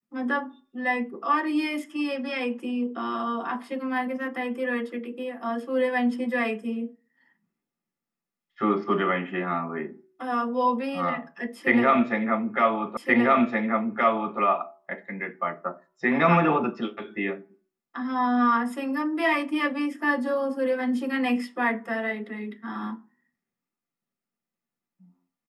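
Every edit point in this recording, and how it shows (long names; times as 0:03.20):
0:12.97: the same again, the last 1.42 s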